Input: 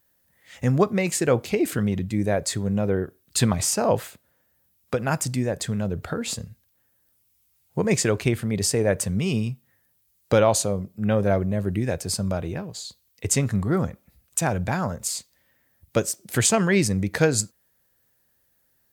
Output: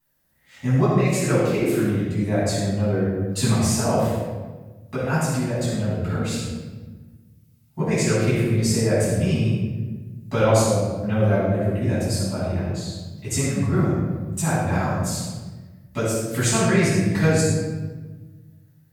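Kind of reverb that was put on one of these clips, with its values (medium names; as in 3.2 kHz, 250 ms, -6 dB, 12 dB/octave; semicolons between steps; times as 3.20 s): simulated room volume 970 m³, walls mixed, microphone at 9.9 m; trim -14 dB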